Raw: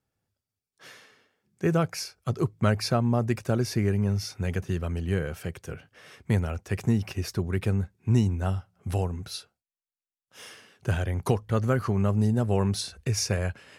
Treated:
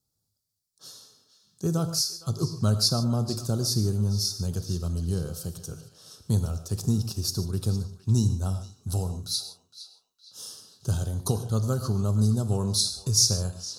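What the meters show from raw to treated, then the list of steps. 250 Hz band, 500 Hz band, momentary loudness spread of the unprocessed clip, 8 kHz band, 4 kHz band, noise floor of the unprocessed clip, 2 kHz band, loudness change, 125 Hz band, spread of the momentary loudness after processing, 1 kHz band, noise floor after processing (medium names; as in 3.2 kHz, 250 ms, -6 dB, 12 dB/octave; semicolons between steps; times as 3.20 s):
-1.5 dB, -5.0 dB, 13 LU, +9.5 dB, +9.0 dB, under -85 dBFS, under -10 dB, +1.0 dB, +0.5 dB, 18 LU, -6.0 dB, -79 dBFS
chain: FFT filter 150 Hz 0 dB, 600 Hz -7 dB, 1.3 kHz -6 dB, 2.1 kHz -30 dB, 4.1 kHz +9 dB; on a send: band-passed feedback delay 462 ms, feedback 49%, band-pass 2.6 kHz, level -12.5 dB; on the sum: gated-style reverb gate 170 ms flat, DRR 9 dB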